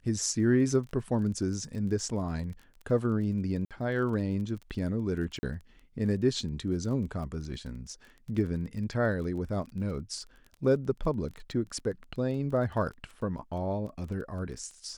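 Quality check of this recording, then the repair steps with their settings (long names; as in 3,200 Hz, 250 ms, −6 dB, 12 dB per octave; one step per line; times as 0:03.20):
surface crackle 24 per second −39 dBFS
0:03.65–0:03.71: drop-out 57 ms
0:05.39–0:05.43: drop-out 40 ms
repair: click removal
repair the gap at 0:03.65, 57 ms
repair the gap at 0:05.39, 40 ms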